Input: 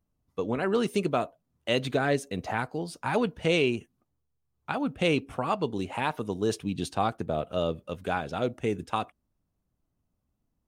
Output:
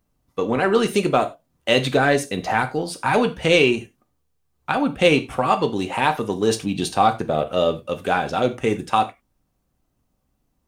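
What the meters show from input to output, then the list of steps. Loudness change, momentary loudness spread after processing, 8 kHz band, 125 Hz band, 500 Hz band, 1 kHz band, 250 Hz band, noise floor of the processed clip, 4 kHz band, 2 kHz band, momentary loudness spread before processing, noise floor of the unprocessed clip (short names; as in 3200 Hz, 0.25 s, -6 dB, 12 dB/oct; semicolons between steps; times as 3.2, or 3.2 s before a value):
+9.0 dB, 8 LU, +10.5 dB, +6.0 dB, +8.5 dB, +10.5 dB, +7.0 dB, -71 dBFS, +9.5 dB, +10.0 dB, 9 LU, -79 dBFS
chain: low shelf 350 Hz -4.5 dB; in parallel at -11.5 dB: soft clip -32 dBFS, distortion -6 dB; on the sum: non-linear reverb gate 0.12 s falling, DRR 6.5 dB; gain +8.5 dB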